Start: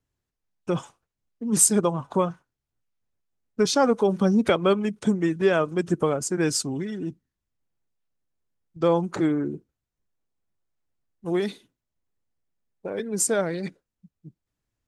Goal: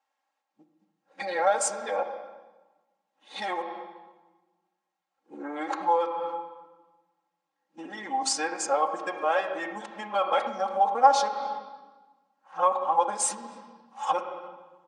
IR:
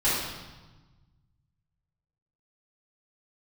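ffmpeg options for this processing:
-filter_complex "[0:a]areverse,asplit=2[a][b];[b]alimiter=limit=-15.5dB:level=0:latency=1:release=399,volume=1dB[c];[a][c]amix=inputs=2:normalize=0,adynamicsmooth=sensitivity=4:basefreq=6.8k,aresample=22050,aresample=44100,asplit=2[d][e];[e]adelay=280,highpass=300,lowpass=3.4k,asoftclip=type=hard:threshold=-13dB,volume=-27dB[f];[d][f]amix=inputs=2:normalize=0,asplit=2[g][h];[1:a]atrim=start_sample=2205,lowpass=3.4k[i];[h][i]afir=irnorm=-1:irlink=0,volume=-18.5dB[j];[g][j]amix=inputs=2:normalize=0,acompressor=threshold=-20dB:ratio=6,highpass=f=780:t=q:w=3.7,aecho=1:1:3.7:0.82,volume=-4dB"

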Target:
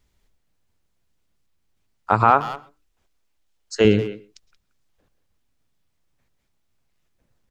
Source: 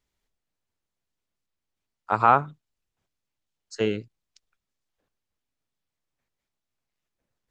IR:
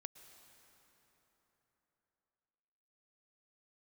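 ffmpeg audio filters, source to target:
-filter_complex "[0:a]asettb=1/sr,asplit=3[a][b][c];[a]atrim=end=2.304[d];[b]atrim=start=2.3:end=3.85,asetpts=PTS-STARTPTS,afade=t=in:d=0.004:c=qsin,afade=t=out:st=1.546:d=0.004:c=qsin,equalizer=f=130:w=1.2:g=-15[e];[c]atrim=start=3.846[f];[d][e]acrossfade=d=0.004:c1=hsin:c2=qsin[g];[g][f]acrossfade=d=0.004:c1=qsin:c2=hsin,alimiter=limit=-11dB:level=0:latency=1:release=216,asplit=2[h][i];[i]adelay=180,highpass=300,lowpass=3.4k,asoftclip=type=hard:threshold=-20.5dB,volume=-12dB[j];[h][j]amix=inputs=2:normalize=0,asplit=2[k][l];[1:a]atrim=start_sample=2205,atrim=end_sample=6174,lowshelf=f=230:g=10.5[m];[l][m]afir=irnorm=-1:irlink=0,volume=12.5dB[n];[k][n]amix=inputs=2:normalize=0,volume=-1.5dB"

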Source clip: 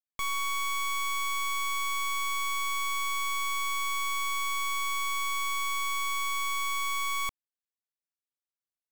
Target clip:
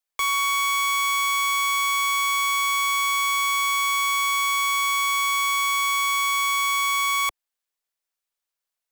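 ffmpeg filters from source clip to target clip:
-filter_complex "[0:a]highpass=f=200:w=0.5412,highpass=f=200:w=1.3066,acrossover=split=370[a][b];[a]aeval=exprs='abs(val(0))':c=same[c];[c][b]amix=inputs=2:normalize=0,volume=9dB"

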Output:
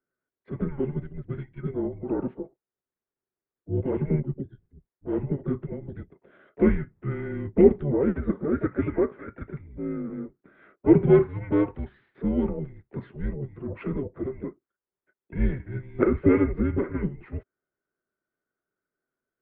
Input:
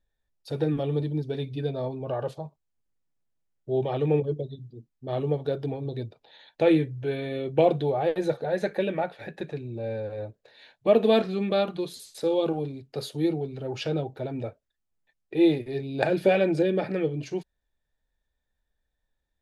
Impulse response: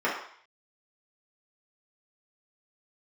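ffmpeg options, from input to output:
-filter_complex "[0:a]asplit=4[a][b][c][d];[b]asetrate=22050,aresample=44100,atempo=2,volume=-15dB[e];[c]asetrate=52444,aresample=44100,atempo=0.840896,volume=-13dB[f];[d]asetrate=66075,aresample=44100,atempo=0.66742,volume=-18dB[g];[a][e][f][g]amix=inputs=4:normalize=0,highpass=f=370:t=q:w=0.5412,highpass=f=370:t=q:w=1.307,lowpass=f=2.3k:t=q:w=0.5176,lowpass=f=2.3k:t=q:w=0.7071,lowpass=f=2.3k:t=q:w=1.932,afreqshift=-290,equalizer=f=390:w=4.2:g=10.5"

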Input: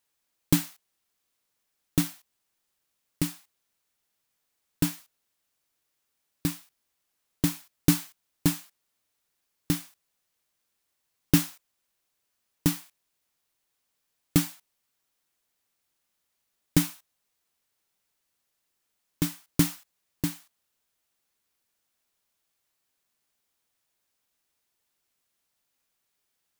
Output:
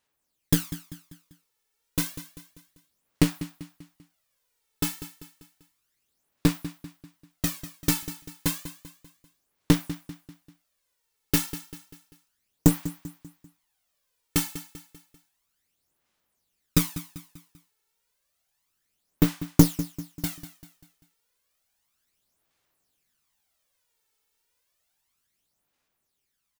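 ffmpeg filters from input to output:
-filter_complex "[0:a]dynaudnorm=f=220:g=13:m=3dB,aphaser=in_gain=1:out_gain=1:delay=2.3:decay=0.6:speed=0.31:type=sinusoidal,asplit=2[a][b];[b]aecho=0:1:196|392|588|784:0.2|0.0878|0.0386|0.017[c];[a][c]amix=inputs=2:normalize=0,aeval=exprs='1.41*(cos(1*acos(clip(val(0)/1.41,-1,1)))-cos(1*PI/2))+0.112*(cos(8*acos(clip(val(0)/1.41,-1,1)))-cos(8*PI/2))':c=same,volume=-2.5dB"

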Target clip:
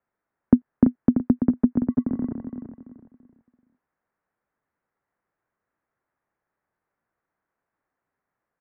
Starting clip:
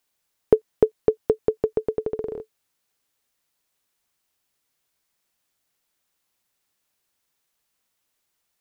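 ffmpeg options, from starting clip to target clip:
-filter_complex "[0:a]asettb=1/sr,asplit=3[a][b][c];[a]atrim=end=1.854[d];[b]atrim=start=1.85:end=2.29,asetpts=PTS-STARTPTS,afade=t=in:d=0.004:c=qsin,afade=t=out:st=0.436:d=0.004:c=qsin,aeval=exprs='sgn(val(0))*max(abs(val(0))-0.00211,0)':c=same[e];[c]atrim=start=2.286[f];[d][e]acrossfade=d=0.004:c1=hsin:c2=qsin[g];[g][f]acrossfade=d=0.004:c1=qsin:c2=hsin,aecho=1:1:336|672|1008|1344:0.447|0.143|0.0457|0.0146,highpass=f=250:t=q:w=0.5412,highpass=f=250:t=q:w=1.307,lowpass=f=2k:t=q:w=0.5176,lowpass=f=2k:t=q:w=0.7071,lowpass=f=2k:t=q:w=1.932,afreqshift=-190,volume=1.5dB"

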